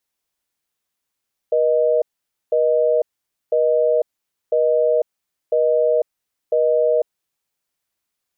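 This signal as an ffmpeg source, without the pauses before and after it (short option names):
-f lavfi -i "aevalsrc='0.15*(sin(2*PI*480*t)+sin(2*PI*620*t))*clip(min(mod(t,1),0.5-mod(t,1))/0.005,0,1)':d=5.88:s=44100"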